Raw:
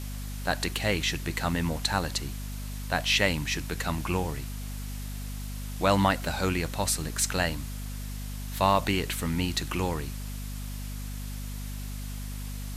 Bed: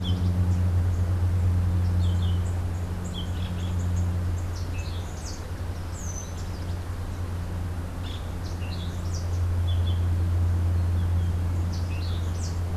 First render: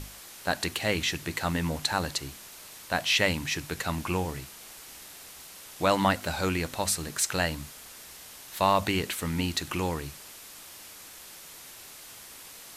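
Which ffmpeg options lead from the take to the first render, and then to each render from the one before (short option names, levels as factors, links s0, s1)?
-af "bandreject=f=50:t=h:w=6,bandreject=f=100:t=h:w=6,bandreject=f=150:t=h:w=6,bandreject=f=200:t=h:w=6,bandreject=f=250:t=h:w=6"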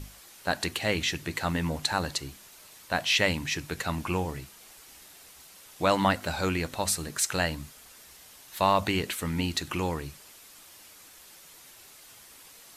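-af "afftdn=nr=6:nf=-47"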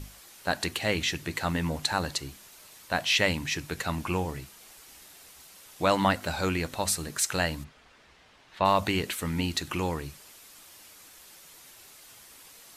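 -filter_complex "[0:a]asplit=3[s0][s1][s2];[s0]afade=t=out:st=7.63:d=0.02[s3];[s1]lowpass=2900,afade=t=in:st=7.63:d=0.02,afade=t=out:st=8.64:d=0.02[s4];[s2]afade=t=in:st=8.64:d=0.02[s5];[s3][s4][s5]amix=inputs=3:normalize=0"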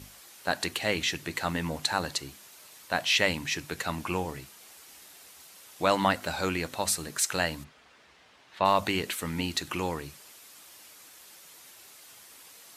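-af "highpass=53,lowshelf=f=150:g=-7.5"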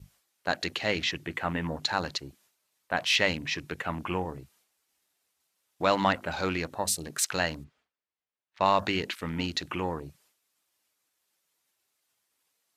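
-af "afwtdn=0.01,agate=range=0.0224:threshold=0.001:ratio=3:detection=peak"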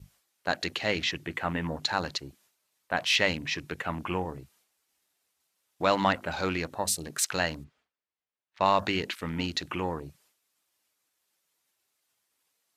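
-af anull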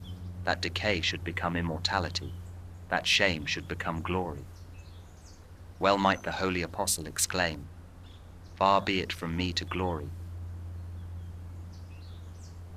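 -filter_complex "[1:a]volume=0.15[s0];[0:a][s0]amix=inputs=2:normalize=0"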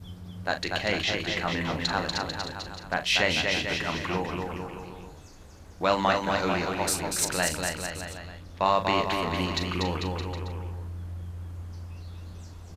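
-filter_complex "[0:a]asplit=2[s0][s1];[s1]adelay=39,volume=0.335[s2];[s0][s2]amix=inputs=2:normalize=0,aecho=1:1:240|444|617.4|764.8|890.1:0.631|0.398|0.251|0.158|0.1"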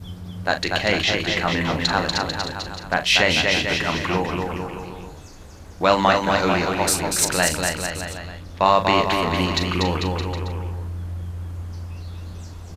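-af "volume=2.24,alimiter=limit=0.794:level=0:latency=1"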